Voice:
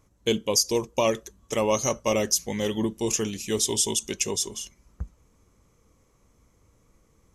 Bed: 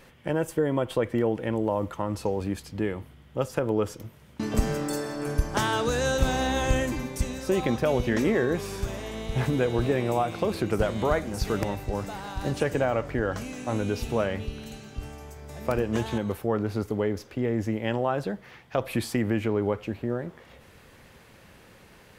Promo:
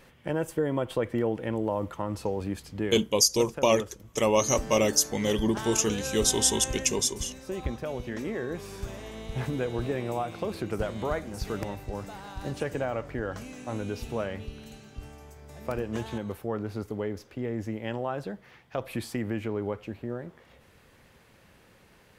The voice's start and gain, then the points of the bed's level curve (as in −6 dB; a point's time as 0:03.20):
2.65 s, +0.5 dB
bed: 0:02.97 −2.5 dB
0:03.19 −10 dB
0:08.23 −10 dB
0:08.87 −5.5 dB